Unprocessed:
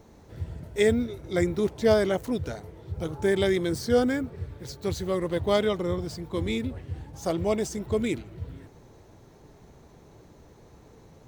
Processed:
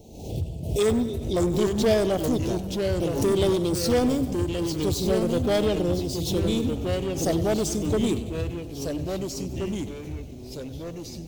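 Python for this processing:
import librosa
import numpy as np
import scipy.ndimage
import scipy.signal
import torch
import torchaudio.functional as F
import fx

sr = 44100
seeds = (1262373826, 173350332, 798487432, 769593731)

p1 = scipy.signal.sosfilt(scipy.signal.cheby1(3, 1.0, [760.0, 2700.0], 'bandstop', fs=sr, output='sos'), x)
p2 = fx.high_shelf(p1, sr, hz=5800.0, db=4.5)
p3 = 10.0 ** (-25.5 / 20.0) * (np.abs((p2 / 10.0 ** (-25.5 / 20.0) + 3.0) % 4.0 - 2.0) - 1.0)
p4 = p2 + (p3 * 10.0 ** (-3.5 / 20.0))
p5 = fx.echo_pitch(p4, sr, ms=705, semitones=-2, count=3, db_per_echo=-6.0)
p6 = p5 + fx.echo_feedback(p5, sr, ms=97, feedback_pct=54, wet_db=-15.0, dry=0)
y = fx.pre_swell(p6, sr, db_per_s=66.0)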